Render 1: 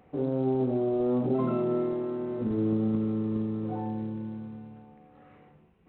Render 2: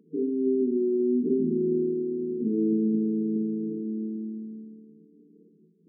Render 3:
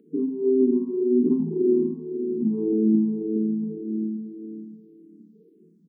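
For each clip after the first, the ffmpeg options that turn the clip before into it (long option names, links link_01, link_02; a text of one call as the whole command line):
ffmpeg -i in.wav -af "afftfilt=real='re*between(b*sr/4096,160,470)':imag='im*between(b*sr/4096,160,470)':win_size=4096:overlap=0.75,volume=3dB" out.wav
ffmpeg -i in.wav -filter_complex "[0:a]acontrast=53,aecho=1:1:271|542|813|1084|1355|1626:0.299|0.164|0.0903|0.0497|0.0273|0.015,asplit=2[link_01][link_02];[link_02]afreqshift=-1.8[link_03];[link_01][link_03]amix=inputs=2:normalize=1" out.wav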